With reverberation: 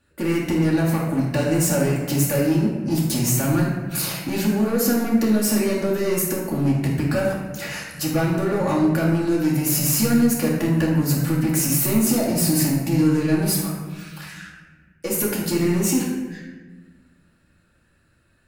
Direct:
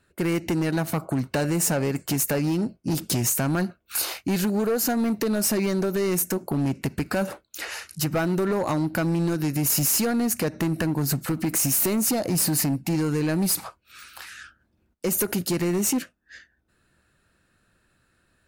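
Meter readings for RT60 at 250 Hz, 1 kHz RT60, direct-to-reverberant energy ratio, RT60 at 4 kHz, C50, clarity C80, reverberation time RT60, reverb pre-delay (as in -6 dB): 2.0 s, 1.2 s, -5.0 dB, 0.80 s, 1.5 dB, 4.5 dB, 1.4 s, 4 ms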